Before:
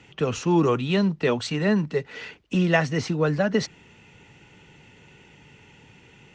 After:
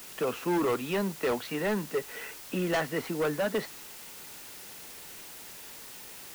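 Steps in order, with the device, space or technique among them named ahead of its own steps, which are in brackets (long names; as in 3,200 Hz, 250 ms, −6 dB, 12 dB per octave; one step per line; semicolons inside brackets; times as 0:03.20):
aircraft radio (band-pass filter 310–2,300 Hz; hard clipping −22.5 dBFS, distortion −10 dB; white noise bed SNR 13 dB)
level −1.5 dB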